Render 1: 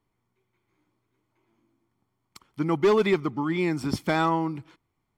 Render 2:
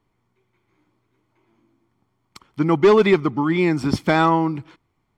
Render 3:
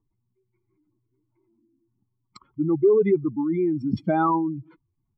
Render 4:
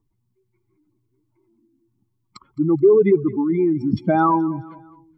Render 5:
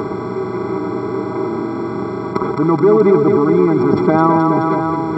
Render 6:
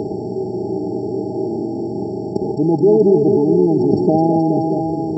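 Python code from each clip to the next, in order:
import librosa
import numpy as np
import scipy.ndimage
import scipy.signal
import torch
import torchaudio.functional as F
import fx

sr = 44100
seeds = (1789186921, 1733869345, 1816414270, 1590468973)

y1 = fx.high_shelf(x, sr, hz=8900.0, db=-11.5)
y1 = y1 * librosa.db_to_amplitude(7.0)
y2 = fx.spec_expand(y1, sr, power=2.5)
y2 = y2 * librosa.db_to_amplitude(-4.0)
y3 = fx.echo_feedback(y2, sr, ms=213, feedback_pct=44, wet_db=-19.5)
y3 = y3 * librosa.db_to_amplitude(4.5)
y4 = fx.bin_compress(y3, sr, power=0.2)
y4 = y4 * librosa.db_to_amplitude(-1.0)
y5 = fx.brickwall_bandstop(y4, sr, low_hz=890.0, high_hz=4300.0)
y5 = y5 * librosa.db_to_amplitude(-1.0)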